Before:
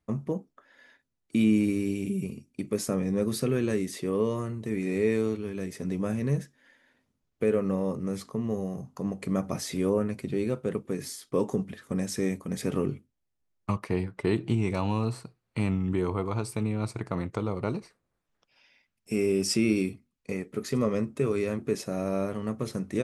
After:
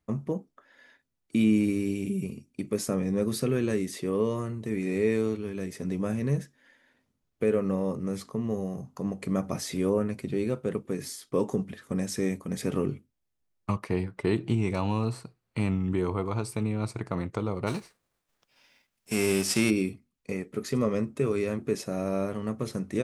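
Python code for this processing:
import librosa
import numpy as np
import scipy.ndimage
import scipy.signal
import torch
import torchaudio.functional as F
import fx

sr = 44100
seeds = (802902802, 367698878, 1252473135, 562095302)

y = fx.envelope_flatten(x, sr, power=0.6, at=(17.66, 19.69), fade=0.02)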